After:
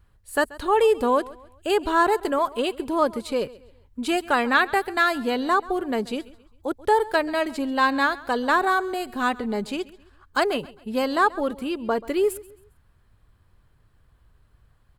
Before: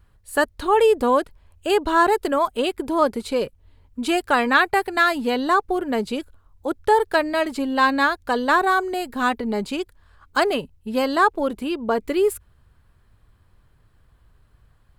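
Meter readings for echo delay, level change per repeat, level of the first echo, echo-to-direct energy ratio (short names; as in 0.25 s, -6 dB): 0.134 s, -8.5 dB, -20.0 dB, -19.5 dB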